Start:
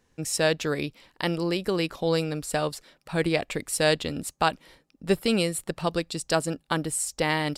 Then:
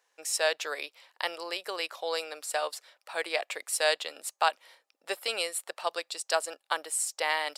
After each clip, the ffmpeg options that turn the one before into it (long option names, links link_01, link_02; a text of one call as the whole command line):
ffmpeg -i in.wav -af "highpass=frequency=580:width=0.5412,highpass=frequency=580:width=1.3066,volume=-1.5dB" out.wav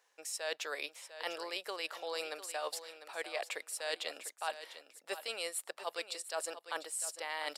ffmpeg -i in.wav -af "areverse,acompressor=threshold=-36dB:ratio=5,areverse,aecho=1:1:699|1398:0.251|0.0402" out.wav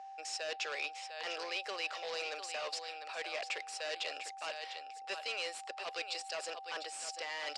ffmpeg -i in.wav -af "aeval=exprs='val(0)+0.00562*sin(2*PI*780*n/s)':channel_layout=same,asoftclip=type=hard:threshold=-38dB,highpass=420,equalizer=frequency=860:width_type=q:width=4:gain=-6,equalizer=frequency=2600:width_type=q:width=4:gain=6,equalizer=frequency=5000:width_type=q:width=4:gain=5,lowpass=frequency=7000:width=0.5412,lowpass=frequency=7000:width=1.3066,volume=3dB" out.wav